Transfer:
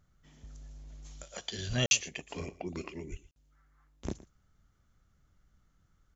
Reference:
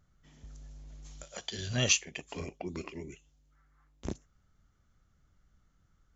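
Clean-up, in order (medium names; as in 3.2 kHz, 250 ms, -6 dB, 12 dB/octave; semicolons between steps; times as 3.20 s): 1.68–1.80 s: high-pass 140 Hz 24 dB/octave; 3.10–3.22 s: high-pass 140 Hz 24 dB/octave; interpolate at 1.86/3.31 s, 51 ms; inverse comb 117 ms -19 dB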